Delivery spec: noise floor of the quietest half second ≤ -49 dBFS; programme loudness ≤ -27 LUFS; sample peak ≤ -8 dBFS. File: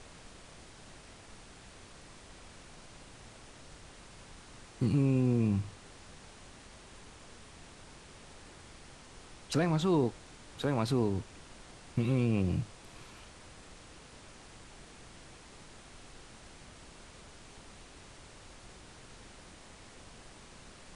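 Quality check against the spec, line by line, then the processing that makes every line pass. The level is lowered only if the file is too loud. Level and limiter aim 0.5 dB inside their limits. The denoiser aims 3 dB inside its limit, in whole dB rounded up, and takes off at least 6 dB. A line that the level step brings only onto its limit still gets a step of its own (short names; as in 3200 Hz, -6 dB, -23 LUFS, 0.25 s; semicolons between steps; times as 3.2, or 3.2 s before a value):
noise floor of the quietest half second -53 dBFS: OK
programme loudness -31.0 LUFS: OK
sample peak -17.5 dBFS: OK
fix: none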